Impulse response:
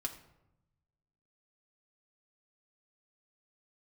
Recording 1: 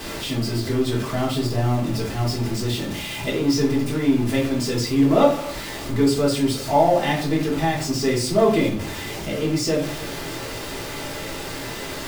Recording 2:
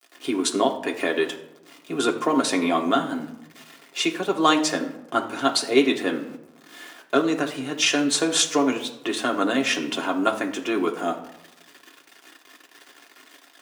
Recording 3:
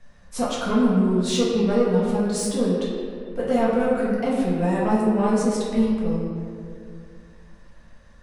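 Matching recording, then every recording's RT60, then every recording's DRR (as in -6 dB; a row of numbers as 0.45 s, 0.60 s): 2; 0.50 s, 0.90 s, 2.3 s; -6.0 dB, 0.5 dB, -7.0 dB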